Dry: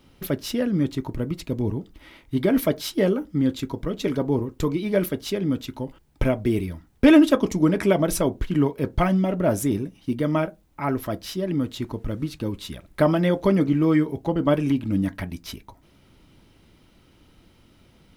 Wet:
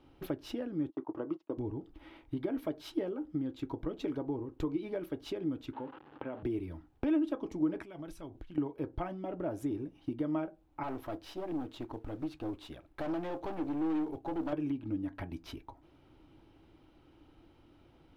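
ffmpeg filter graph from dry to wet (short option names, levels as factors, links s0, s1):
-filter_complex "[0:a]asettb=1/sr,asplit=3[s0][s1][s2];[s0]atrim=end=0.904[s3];[s1]atrim=start=0.9:end=1.58,asetpts=PTS-STARTPTS,afade=t=in:d=0.004:c=qsin,afade=t=out:st=0.676:d=0.004:c=qsin,agate=range=0.0398:threshold=0.02:ratio=16:release=100:detection=peak,highpass=310,equalizer=f=330:t=q:w=4:g=3,equalizer=f=620:t=q:w=4:g=4,equalizer=f=1100:t=q:w=4:g=8,equalizer=f=2300:t=q:w=4:g=-8,equalizer=f=4000:t=q:w=4:g=-10,lowpass=f=5700:w=0.5412,lowpass=f=5700:w=1.3066[s4];[s2]atrim=start=1.576[s5];[s3][s4]acrossfade=d=0.004:c1=hsin:c2=qsin[s6];[s6][s5]acrossfade=d=0.004:c1=qsin:c2=hsin,asettb=1/sr,asplit=3[s7][s8][s9];[s7]atrim=end=5.734[s10];[s8]atrim=start=5.73:end=6.43,asetpts=PTS-STARTPTS,afade=t=in:d=0.004:c=qsin,afade=t=out:st=0.696:d=0.004:c=qsin,aeval=exprs='val(0)+0.5*0.0158*sgn(val(0))':c=same,acompressor=threshold=0.0631:ratio=4:attack=3.2:release=140:knee=1:detection=peak,highpass=260,equalizer=f=340:t=q:w=4:g=-7,equalizer=f=680:t=q:w=4:g=-8,equalizer=f=2300:t=q:w=4:g=-6,lowpass=f=3000:w=0.5412,lowpass=f=3000:w=1.3066[s11];[s9]atrim=start=6.426[s12];[s10][s11]acrossfade=d=0.004:c1=hsin:c2=qsin[s13];[s13][s12]acrossfade=d=0.004:c1=qsin:c2=hsin,asettb=1/sr,asplit=3[s14][s15][s16];[s14]atrim=end=7.824[s17];[s15]atrim=start=7.82:end=8.58,asetpts=PTS-STARTPTS,afade=t=in:d=0.004:c=qsin,afade=t=out:st=0.756:d=0.004:c=qsin,equalizer=f=510:t=o:w=2.6:g=-11,acompressor=threshold=0.0178:ratio=12:attack=3.2:release=140:knee=1:detection=peak[s18];[s16]atrim=start=8.576[s19];[s17][s18]acrossfade=d=0.004:c1=hsin:c2=qsin[s20];[s20][s19]acrossfade=d=0.004:c1=qsin:c2=hsin,asettb=1/sr,asplit=3[s21][s22][s23];[s21]atrim=end=10.834[s24];[s22]atrim=start=10.83:end=14.53,asetpts=PTS-STARTPTS,afade=t=in:d=0.004:c=qsin,afade=t=out:st=3.696:d=0.004:c=qsin,lowshelf=f=310:g=-4,aeval=exprs='(tanh(25.1*val(0)+0.5)-tanh(0.5))/25.1':c=same,acrusher=bits=6:mode=log:mix=0:aa=0.000001[s25];[s23]atrim=start=14.526[s26];[s24][s25]acrossfade=d=0.004:c1=hsin:c2=qsin[s27];[s27][s26]acrossfade=d=0.004:c1=qsin:c2=hsin,bass=f=250:g=-1,treble=f=4000:g=-14,acompressor=threshold=0.0355:ratio=5,equalizer=f=200:t=o:w=0.33:g=-10,equalizer=f=315:t=o:w=0.33:g=9,equalizer=f=800:t=o:w=0.33:g=6,equalizer=f=2000:t=o:w=0.33:g=-5,volume=0.501"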